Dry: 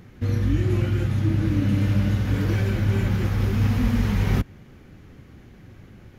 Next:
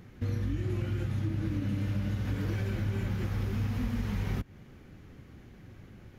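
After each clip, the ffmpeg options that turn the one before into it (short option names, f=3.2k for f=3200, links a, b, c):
-af "acompressor=threshold=-24dB:ratio=4,volume=-4.5dB"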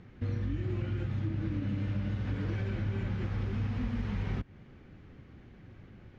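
-af "lowpass=3.9k,volume=-1.5dB"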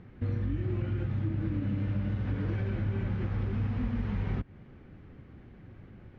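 -af "aemphasis=mode=reproduction:type=75kf,volume=2dB"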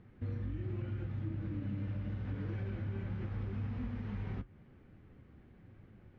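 -af "flanger=delay=8.8:depth=4.3:regen=-64:speed=1.2:shape=sinusoidal,volume=-3.5dB"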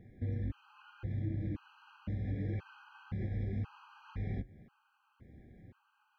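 -af "afftfilt=real='re*gt(sin(2*PI*0.96*pts/sr)*(1-2*mod(floor(b*sr/1024/810),2)),0)':imag='im*gt(sin(2*PI*0.96*pts/sr)*(1-2*mod(floor(b*sr/1024/810),2)),0)':win_size=1024:overlap=0.75,volume=2.5dB"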